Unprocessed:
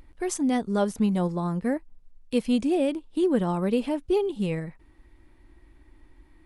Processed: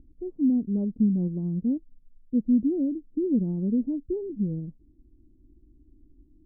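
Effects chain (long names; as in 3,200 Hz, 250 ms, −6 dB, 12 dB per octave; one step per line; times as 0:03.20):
transistor ladder low-pass 330 Hz, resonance 40%
level +5.5 dB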